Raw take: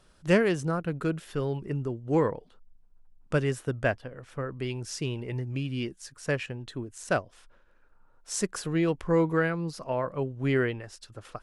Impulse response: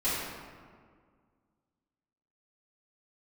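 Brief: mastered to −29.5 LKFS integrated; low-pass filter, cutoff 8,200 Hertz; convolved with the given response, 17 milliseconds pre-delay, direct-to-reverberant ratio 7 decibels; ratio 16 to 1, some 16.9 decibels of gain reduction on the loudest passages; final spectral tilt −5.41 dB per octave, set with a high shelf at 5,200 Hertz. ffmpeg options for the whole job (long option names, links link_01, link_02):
-filter_complex "[0:a]lowpass=8200,highshelf=frequency=5200:gain=-3,acompressor=threshold=-35dB:ratio=16,asplit=2[link_01][link_02];[1:a]atrim=start_sample=2205,adelay=17[link_03];[link_02][link_03]afir=irnorm=-1:irlink=0,volume=-17dB[link_04];[link_01][link_04]amix=inputs=2:normalize=0,volume=10.5dB"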